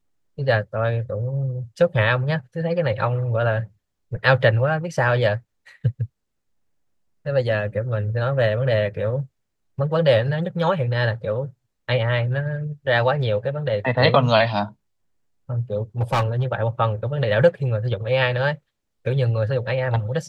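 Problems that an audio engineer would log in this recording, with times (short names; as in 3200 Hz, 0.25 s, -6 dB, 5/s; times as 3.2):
16.01–16.43 clipped -16 dBFS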